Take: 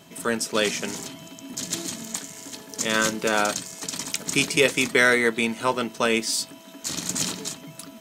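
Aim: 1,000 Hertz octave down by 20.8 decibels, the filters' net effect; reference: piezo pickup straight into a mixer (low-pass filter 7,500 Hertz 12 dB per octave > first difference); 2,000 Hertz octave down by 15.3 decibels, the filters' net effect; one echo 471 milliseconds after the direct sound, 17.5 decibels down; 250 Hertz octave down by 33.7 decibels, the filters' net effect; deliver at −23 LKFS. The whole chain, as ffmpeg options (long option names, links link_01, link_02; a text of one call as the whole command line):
ffmpeg -i in.wav -af "lowpass=7500,aderivative,equalizer=frequency=250:width_type=o:gain=-6.5,equalizer=frequency=1000:width_type=o:gain=-4.5,equalizer=frequency=2000:width_type=o:gain=-4,aecho=1:1:471:0.133,volume=10.5dB" out.wav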